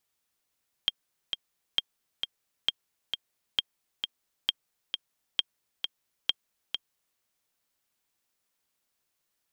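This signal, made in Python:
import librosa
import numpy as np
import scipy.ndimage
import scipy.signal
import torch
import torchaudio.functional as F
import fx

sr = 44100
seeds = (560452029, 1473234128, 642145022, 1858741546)

y = fx.click_track(sr, bpm=133, beats=2, bars=7, hz=3210.0, accent_db=6.0, level_db=-10.5)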